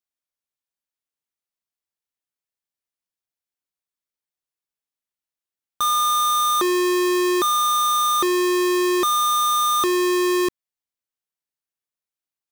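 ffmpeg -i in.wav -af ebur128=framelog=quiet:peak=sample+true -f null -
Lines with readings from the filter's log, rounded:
Integrated loudness:
  I:         -18.9 LUFS
  Threshold: -28.9 LUFS
Loudness range:
  LRA:         5.8 LU
  Threshold: -40.3 LUFS
  LRA low:   -24.4 LUFS
  LRA high:  -18.6 LUFS
Sample peak:
  Peak:      -19.2 dBFS
True peak:
  Peak:      -17.1 dBFS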